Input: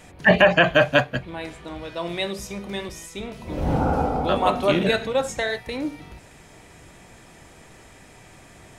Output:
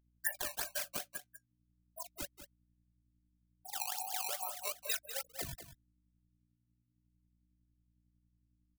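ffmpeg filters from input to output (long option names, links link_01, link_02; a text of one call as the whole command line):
ffmpeg -i in.wav -filter_complex "[0:a]highpass=frequency=640:width=0.5412,highpass=frequency=640:width=1.3066,afftfilt=real='re*gte(hypot(re,im),0.2)':imag='im*gte(hypot(re,im),0.2)':win_size=1024:overlap=0.75,equalizer=frequency=2700:width=7.1:gain=-6.5,aecho=1:1:6.8:0.76,acompressor=threshold=-29dB:ratio=16,acrusher=samples=15:mix=1:aa=0.000001:lfo=1:lforange=24:lforate=2.4,crystalizer=i=7.5:c=0,asoftclip=type=tanh:threshold=-5dB,aeval=exprs='val(0)+0.00112*(sin(2*PI*60*n/s)+sin(2*PI*2*60*n/s)/2+sin(2*PI*3*60*n/s)/3+sin(2*PI*4*60*n/s)/4+sin(2*PI*5*60*n/s)/5)':channel_layout=same,flanger=delay=0.3:depth=8.8:regen=-62:speed=0.37:shape=triangular,tremolo=f=49:d=0.519,asplit=2[link_01][link_02];[link_02]aecho=0:1:194:0.266[link_03];[link_01][link_03]amix=inputs=2:normalize=0,volume=-8dB" out.wav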